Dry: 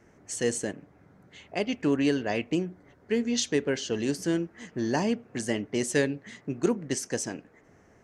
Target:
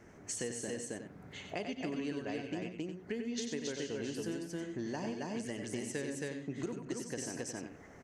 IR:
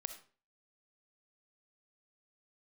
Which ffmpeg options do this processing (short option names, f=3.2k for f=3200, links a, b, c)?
-filter_complex "[0:a]asplit=2[a][b];[b]aecho=0:1:99.13|271.1:0.282|0.708[c];[a][c]amix=inputs=2:normalize=0,acompressor=threshold=-39dB:ratio=6,asplit=2[d][e];[e]aecho=0:1:92:0.376[f];[d][f]amix=inputs=2:normalize=0,volume=1.5dB"